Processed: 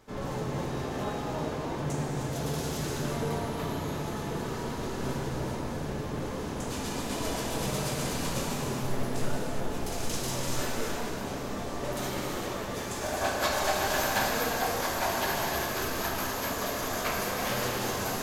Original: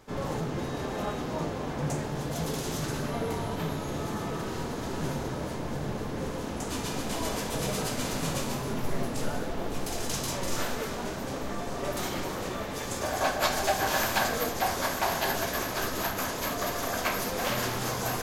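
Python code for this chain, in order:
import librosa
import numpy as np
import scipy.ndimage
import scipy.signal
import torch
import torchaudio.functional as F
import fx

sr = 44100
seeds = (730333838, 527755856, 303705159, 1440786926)

y = fx.rev_gated(x, sr, seeds[0], gate_ms=420, shape='flat', drr_db=0.0)
y = y * 10.0 ** (-3.5 / 20.0)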